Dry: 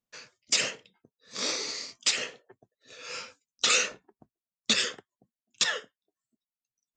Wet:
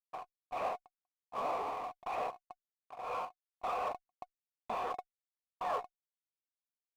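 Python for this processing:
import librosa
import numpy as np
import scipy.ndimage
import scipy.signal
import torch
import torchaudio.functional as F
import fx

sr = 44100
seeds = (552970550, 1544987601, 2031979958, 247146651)

y = fx.fuzz(x, sr, gain_db=41.0, gate_db=-43.0)
y = fx.formant_cascade(y, sr, vowel='a')
y = fx.power_curve(y, sr, exponent=0.7)
y = y * 10.0 ** (-1.0 / 20.0)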